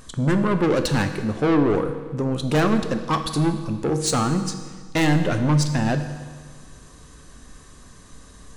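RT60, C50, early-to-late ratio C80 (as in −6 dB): 1.6 s, 9.0 dB, 10.5 dB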